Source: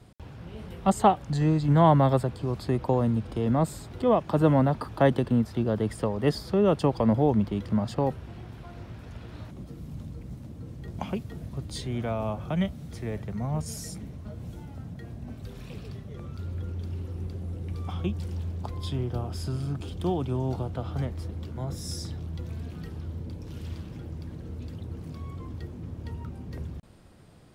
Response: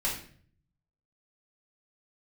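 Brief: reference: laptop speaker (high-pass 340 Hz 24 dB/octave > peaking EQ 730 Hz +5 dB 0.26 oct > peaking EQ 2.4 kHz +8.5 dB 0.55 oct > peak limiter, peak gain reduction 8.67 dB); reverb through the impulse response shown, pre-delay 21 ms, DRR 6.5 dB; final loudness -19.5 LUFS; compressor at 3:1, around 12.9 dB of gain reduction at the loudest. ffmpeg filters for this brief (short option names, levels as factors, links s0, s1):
-filter_complex "[0:a]acompressor=threshold=0.0251:ratio=3,asplit=2[s0][s1];[1:a]atrim=start_sample=2205,adelay=21[s2];[s1][s2]afir=irnorm=-1:irlink=0,volume=0.224[s3];[s0][s3]amix=inputs=2:normalize=0,highpass=f=340:w=0.5412,highpass=f=340:w=1.3066,equalizer=f=730:t=o:w=0.26:g=5,equalizer=f=2400:t=o:w=0.55:g=8.5,volume=12.6,alimiter=limit=0.562:level=0:latency=1"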